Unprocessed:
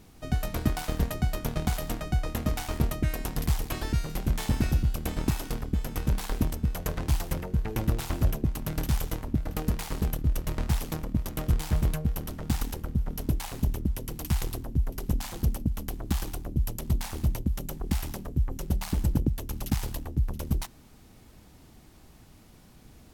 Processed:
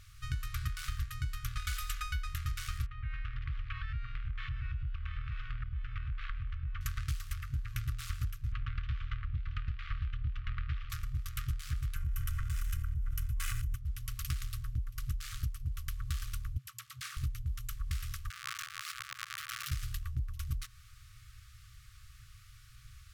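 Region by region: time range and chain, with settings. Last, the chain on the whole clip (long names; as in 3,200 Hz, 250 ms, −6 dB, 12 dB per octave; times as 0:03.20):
0:01.57–0:02.27: bass and treble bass −5 dB, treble +1 dB + comb filter 4 ms, depth 96%
0:02.86–0:06.81: low-pass filter 2,800 Hz 24 dB per octave + downward compressor 4 to 1, threshold −32 dBFS
0:08.52–0:10.90: low-pass filter 3,200 Hz 24 dB per octave + multiband upward and downward compressor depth 100%
0:11.96–0:13.76: parametric band 4,200 Hz −9.5 dB 0.86 octaves + comb filter 2 ms, depth 40% + envelope flattener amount 100%
0:16.58–0:17.17: high-pass filter 230 Hz 24 dB per octave + spectral tilt −1.5 dB per octave + all-pass dispersion lows, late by 71 ms, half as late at 550 Hz
0:18.30–0:19.71: each half-wave held at its own peak + high-pass filter 590 Hz + compressor whose output falls as the input rises −41 dBFS
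whole clip: brick-wall band-stop 130–1,100 Hz; high-shelf EQ 12,000 Hz −9.5 dB; downward compressor 6 to 1, threshold −33 dBFS; level +1 dB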